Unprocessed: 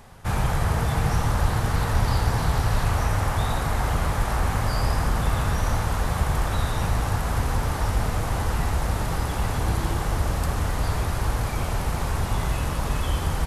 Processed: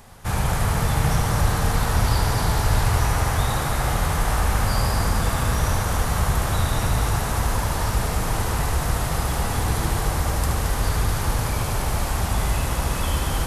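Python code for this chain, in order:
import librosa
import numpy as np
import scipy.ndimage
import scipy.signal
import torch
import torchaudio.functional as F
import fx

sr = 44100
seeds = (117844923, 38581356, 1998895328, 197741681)

y = fx.high_shelf(x, sr, hz=4700.0, db=6.5)
y = fx.echo_heads(y, sr, ms=74, heads='first and third', feedback_pct=64, wet_db=-7.5)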